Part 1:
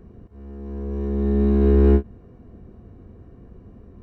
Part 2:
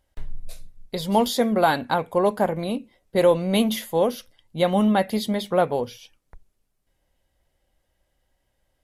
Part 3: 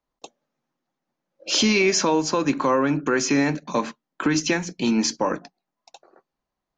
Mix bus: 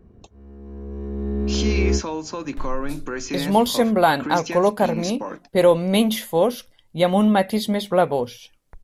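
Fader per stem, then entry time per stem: -5.0, +2.5, -8.0 dB; 0.00, 2.40, 0.00 s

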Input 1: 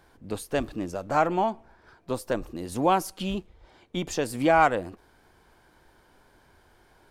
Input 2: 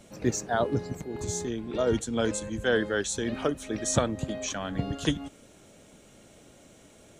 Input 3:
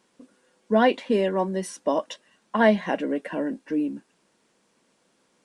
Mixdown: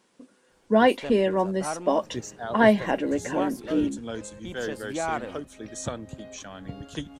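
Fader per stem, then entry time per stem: -9.5, -7.5, +0.5 dB; 0.50, 1.90, 0.00 s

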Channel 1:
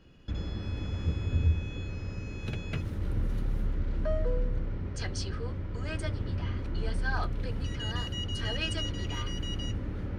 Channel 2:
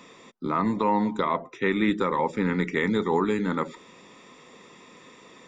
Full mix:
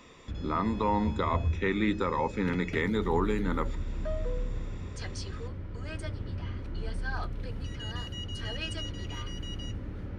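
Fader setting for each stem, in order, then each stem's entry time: -3.5, -4.5 dB; 0.00, 0.00 s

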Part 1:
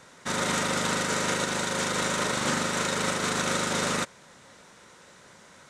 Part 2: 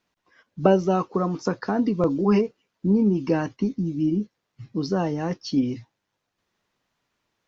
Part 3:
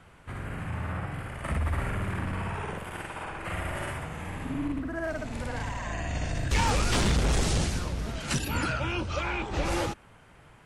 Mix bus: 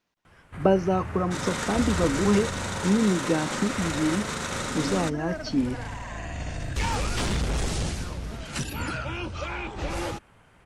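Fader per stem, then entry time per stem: -4.5, -2.5, -2.0 dB; 1.05, 0.00, 0.25 s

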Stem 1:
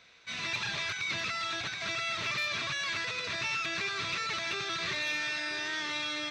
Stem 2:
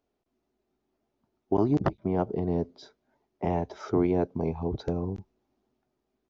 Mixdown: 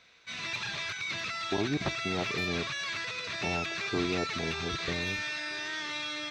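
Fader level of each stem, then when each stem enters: -1.5, -7.0 dB; 0.00, 0.00 s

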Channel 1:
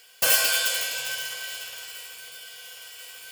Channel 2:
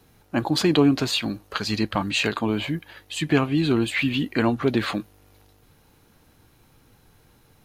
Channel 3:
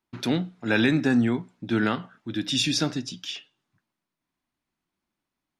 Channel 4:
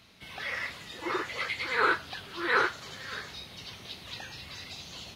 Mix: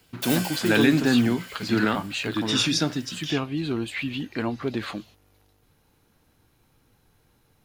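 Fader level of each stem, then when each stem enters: -11.5, -6.5, +1.0, -12.0 dB; 0.00, 0.00, 0.00, 0.00 s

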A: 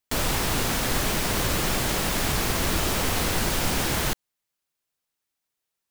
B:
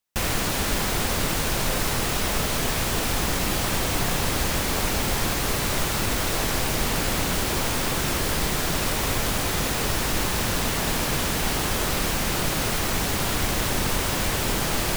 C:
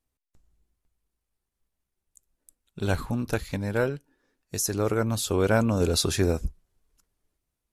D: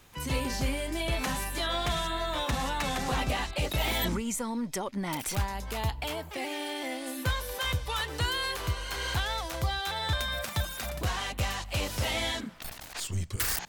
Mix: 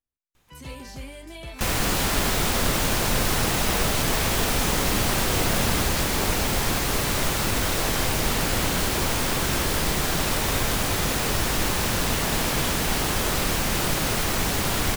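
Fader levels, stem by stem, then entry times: -5.0, +0.5, -12.5, -8.0 dB; 1.70, 1.45, 0.00, 0.35 s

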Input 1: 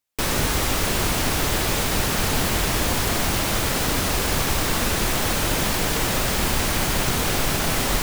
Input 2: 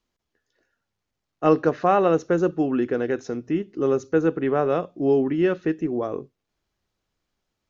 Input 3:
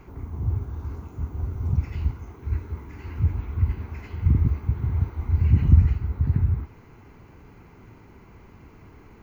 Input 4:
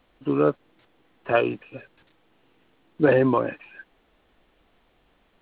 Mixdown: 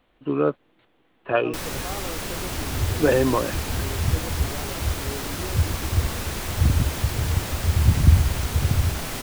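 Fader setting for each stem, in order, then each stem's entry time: -8.5, -18.0, 0.0, -1.0 dB; 1.35, 0.00, 2.35, 0.00 s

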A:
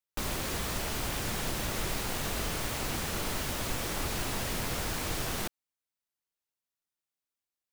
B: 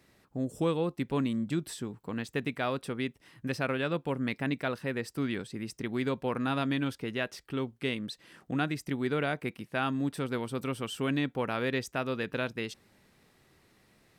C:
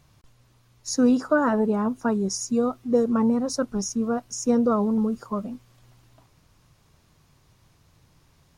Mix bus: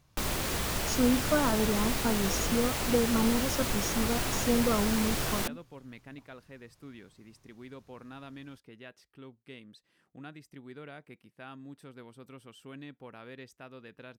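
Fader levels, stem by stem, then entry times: +2.0, -16.0, -6.5 dB; 0.00, 1.65, 0.00 s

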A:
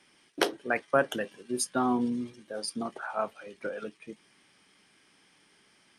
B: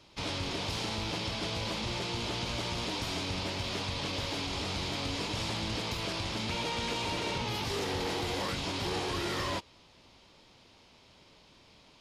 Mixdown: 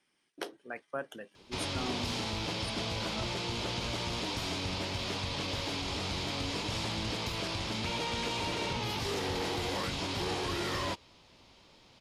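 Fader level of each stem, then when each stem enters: -13.0, -0.5 dB; 0.00, 1.35 s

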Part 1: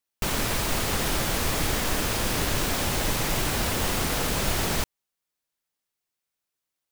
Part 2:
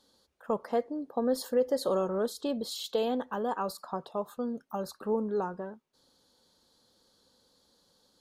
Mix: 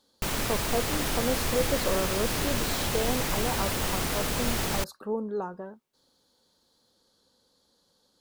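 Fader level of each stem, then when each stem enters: -3.0, -1.0 dB; 0.00, 0.00 s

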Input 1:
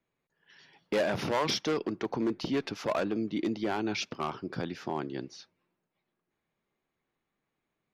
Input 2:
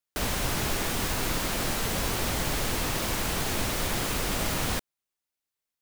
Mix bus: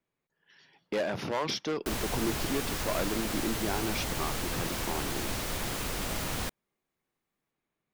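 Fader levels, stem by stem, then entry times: -2.5, -5.0 dB; 0.00, 1.70 s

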